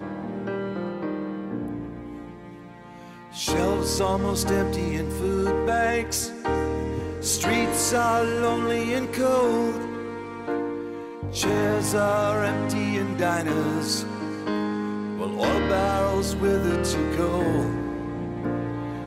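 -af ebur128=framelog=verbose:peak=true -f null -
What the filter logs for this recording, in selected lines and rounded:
Integrated loudness:
  I:         -25.2 LUFS
  Threshold: -35.5 LUFS
Loudness range:
  LRA:         4.3 LU
  Threshold: -45.1 LUFS
  LRA low:   -27.8 LUFS
  LRA high:  -23.5 LUFS
True peak:
  Peak:      -13.4 dBFS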